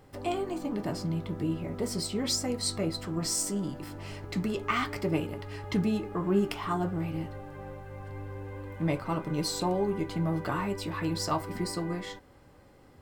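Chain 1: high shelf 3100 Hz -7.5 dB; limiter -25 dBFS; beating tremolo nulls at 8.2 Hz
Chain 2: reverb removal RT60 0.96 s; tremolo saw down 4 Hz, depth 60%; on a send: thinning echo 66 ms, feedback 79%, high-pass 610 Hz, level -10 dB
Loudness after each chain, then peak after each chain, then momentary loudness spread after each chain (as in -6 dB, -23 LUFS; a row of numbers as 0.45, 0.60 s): -38.5, -35.0 LUFS; -25.0, -13.5 dBFS; 8, 15 LU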